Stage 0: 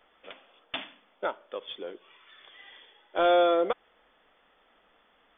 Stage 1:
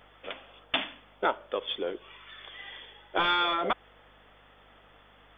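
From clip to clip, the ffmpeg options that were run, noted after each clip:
ffmpeg -i in.wav -af "acontrast=70,afftfilt=real='re*lt(hypot(re,im),0.501)':imag='im*lt(hypot(re,im),0.501)':win_size=1024:overlap=0.75,aeval=exprs='val(0)+0.000708*(sin(2*PI*50*n/s)+sin(2*PI*2*50*n/s)/2+sin(2*PI*3*50*n/s)/3+sin(2*PI*4*50*n/s)/4+sin(2*PI*5*50*n/s)/5)':channel_layout=same" out.wav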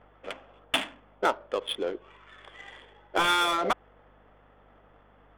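ffmpeg -i in.wav -af "adynamicsmooth=sensitivity=6.5:basefreq=1300,volume=2dB" out.wav

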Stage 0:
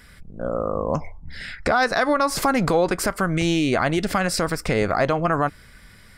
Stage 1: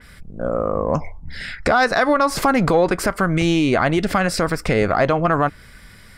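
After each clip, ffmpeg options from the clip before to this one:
ffmpeg -i in.wav -af "acontrast=34,adynamicequalizer=threshold=0.0224:dfrequency=4000:dqfactor=0.7:tfrequency=4000:tqfactor=0.7:attack=5:release=100:ratio=0.375:range=3:mode=cutabove:tftype=highshelf,volume=-1.5dB" out.wav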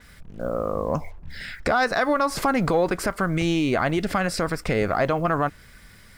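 ffmpeg -i in.wav -af "acrusher=bits=7:mix=0:aa=0.5,volume=-5dB" out.wav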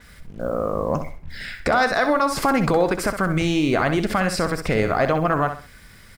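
ffmpeg -i in.wav -af "aecho=1:1:64|128|192:0.355|0.106|0.0319,volume=2dB" out.wav

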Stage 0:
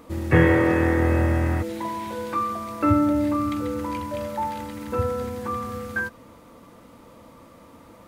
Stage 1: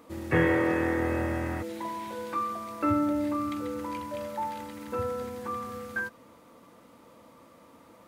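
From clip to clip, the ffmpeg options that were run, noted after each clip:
ffmpeg -i in.wav -af "highpass=frequency=190:poles=1,volume=-5dB" out.wav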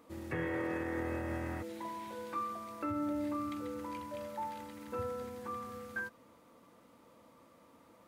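ffmpeg -i in.wav -af "alimiter=limit=-20.5dB:level=0:latency=1:release=113,volume=-7dB" out.wav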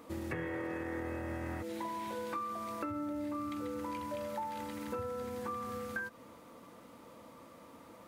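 ffmpeg -i in.wav -af "acompressor=threshold=-43dB:ratio=6,volume=7dB" out.wav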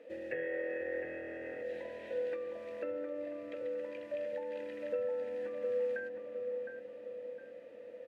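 ffmpeg -i in.wav -filter_complex "[0:a]asplit=3[link_01][link_02][link_03];[link_01]bandpass=frequency=530:width_type=q:width=8,volume=0dB[link_04];[link_02]bandpass=frequency=1840:width_type=q:width=8,volume=-6dB[link_05];[link_03]bandpass=frequency=2480:width_type=q:width=8,volume=-9dB[link_06];[link_04][link_05][link_06]amix=inputs=3:normalize=0,asplit=2[link_07][link_08];[link_08]adelay=711,lowpass=frequency=1200:poles=1,volume=-4dB,asplit=2[link_09][link_10];[link_10]adelay=711,lowpass=frequency=1200:poles=1,volume=0.54,asplit=2[link_11][link_12];[link_12]adelay=711,lowpass=frequency=1200:poles=1,volume=0.54,asplit=2[link_13][link_14];[link_14]adelay=711,lowpass=frequency=1200:poles=1,volume=0.54,asplit=2[link_15][link_16];[link_16]adelay=711,lowpass=frequency=1200:poles=1,volume=0.54,asplit=2[link_17][link_18];[link_18]adelay=711,lowpass=frequency=1200:poles=1,volume=0.54,asplit=2[link_19][link_20];[link_20]adelay=711,lowpass=frequency=1200:poles=1,volume=0.54[link_21];[link_07][link_09][link_11][link_13][link_15][link_17][link_19][link_21]amix=inputs=8:normalize=0,volume=9.5dB" out.wav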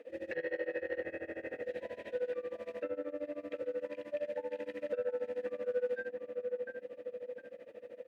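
ffmpeg -i in.wav -af "asoftclip=type=tanh:threshold=-29.5dB,tremolo=f=13:d=0.93,volume=5dB" out.wav

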